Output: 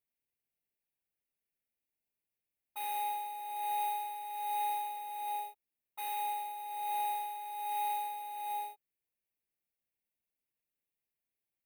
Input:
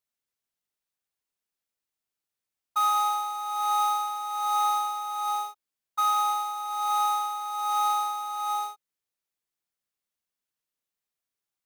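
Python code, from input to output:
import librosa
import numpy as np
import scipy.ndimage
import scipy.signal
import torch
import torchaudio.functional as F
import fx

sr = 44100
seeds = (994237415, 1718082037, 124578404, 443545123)

y = fx.band_shelf(x, sr, hz=4200.0, db=-11.5, octaves=1.1)
y = fx.fixed_phaser(y, sr, hz=3000.0, stages=4)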